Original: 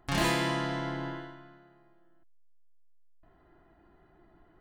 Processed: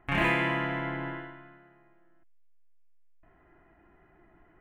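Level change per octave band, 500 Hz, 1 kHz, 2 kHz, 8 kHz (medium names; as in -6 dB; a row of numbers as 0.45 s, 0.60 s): +0.5 dB, +1.5 dB, +5.5 dB, under -15 dB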